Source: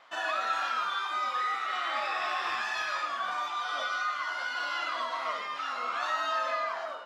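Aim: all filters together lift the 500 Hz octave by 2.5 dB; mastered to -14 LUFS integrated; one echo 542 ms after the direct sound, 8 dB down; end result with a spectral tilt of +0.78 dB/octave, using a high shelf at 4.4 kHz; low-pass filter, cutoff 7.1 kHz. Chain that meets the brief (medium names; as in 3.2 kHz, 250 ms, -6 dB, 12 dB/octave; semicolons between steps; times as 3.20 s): low-pass 7.1 kHz; peaking EQ 500 Hz +3.5 dB; treble shelf 4.4 kHz +6 dB; delay 542 ms -8 dB; trim +15.5 dB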